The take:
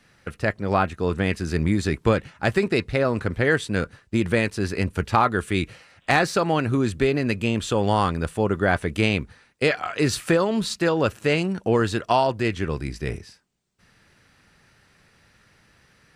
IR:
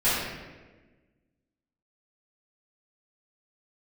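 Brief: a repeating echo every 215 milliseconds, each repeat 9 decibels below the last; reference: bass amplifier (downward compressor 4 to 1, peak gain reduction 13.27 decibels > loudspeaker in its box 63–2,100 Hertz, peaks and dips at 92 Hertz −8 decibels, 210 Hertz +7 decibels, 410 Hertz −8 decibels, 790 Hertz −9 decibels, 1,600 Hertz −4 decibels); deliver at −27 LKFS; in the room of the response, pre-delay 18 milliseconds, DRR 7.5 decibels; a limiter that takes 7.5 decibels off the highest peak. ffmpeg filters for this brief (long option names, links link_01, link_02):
-filter_complex "[0:a]alimiter=limit=-13.5dB:level=0:latency=1,aecho=1:1:215|430|645|860:0.355|0.124|0.0435|0.0152,asplit=2[link_01][link_02];[1:a]atrim=start_sample=2205,adelay=18[link_03];[link_02][link_03]afir=irnorm=-1:irlink=0,volume=-22.5dB[link_04];[link_01][link_04]amix=inputs=2:normalize=0,acompressor=threshold=-32dB:ratio=4,highpass=frequency=63:width=0.5412,highpass=frequency=63:width=1.3066,equalizer=frequency=92:width_type=q:width=4:gain=-8,equalizer=frequency=210:width_type=q:width=4:gain=7,equalizer=frequency=410:width_type=q:width=4:gain=-8,equalizer=frequency=790:width_type=q:width=4:gain=-9,equalizer=frequency=1600:width_type=q:width=4:gain=-4,lowpass=frequency=2100:width=0.5412,lowpass=frequency=2100:width=1.3066,volume=8dB"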